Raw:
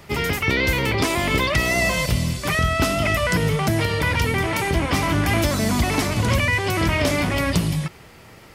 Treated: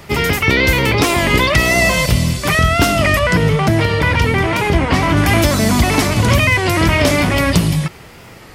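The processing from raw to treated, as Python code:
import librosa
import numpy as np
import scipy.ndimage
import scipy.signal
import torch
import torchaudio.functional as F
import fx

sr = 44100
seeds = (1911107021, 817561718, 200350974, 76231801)

y = fx.lowpass(x, sr, hz=3800.0, slope=6, at=(3.19, 5.17))
y = fx.record_warp(y, sr, rpm=33.33, depth_cents=100.0)
y = y * 10.0 ** (7.0 / 20.0)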